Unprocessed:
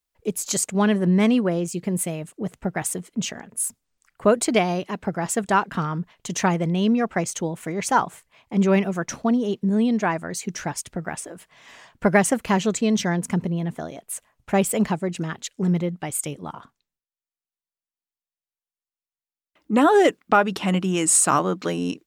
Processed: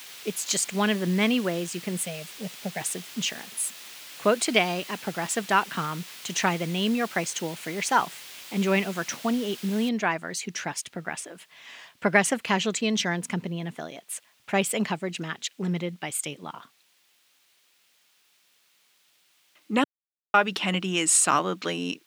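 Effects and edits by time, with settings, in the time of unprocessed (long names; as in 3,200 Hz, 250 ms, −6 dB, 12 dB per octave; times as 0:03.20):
0:01.98–0:02.81: phaser with its sweep stopped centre 330 Hz, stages 6
0:09.89: noise floor change −42 dB −63 dB
0:19.84–0:20.34: silence
whole clip: high-pass filter 150 Hz 12 dB per octave; parametric band 3,000 Hz +10 dB 2 octaves; level −5.5 dB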